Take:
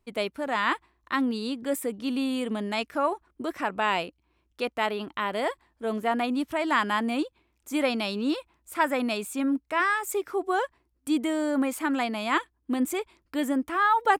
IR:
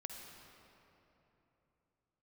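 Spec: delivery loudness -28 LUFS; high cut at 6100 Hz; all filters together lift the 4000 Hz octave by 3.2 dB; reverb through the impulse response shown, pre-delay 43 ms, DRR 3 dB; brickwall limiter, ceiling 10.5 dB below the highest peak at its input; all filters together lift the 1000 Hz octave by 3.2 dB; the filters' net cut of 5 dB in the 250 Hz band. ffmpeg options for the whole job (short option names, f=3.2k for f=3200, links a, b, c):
-filter_complex "[0:a]lowpass=6.1k,equalizer=f=250:t=o:g=-6,equalizer=f=1k:t=o:g=4,equalizer=f=4k:t=o:g=4.5,alimiter=limit=-17dB:level=0:latency=1,asplit=2[a][b];[1:a]atrim=start_sample=2205,adelay=43[c];[b][c]afir=irnorm=-1:irlink=0,volume=0dB[d];[a][d]amix=inputs=2:normalize=0"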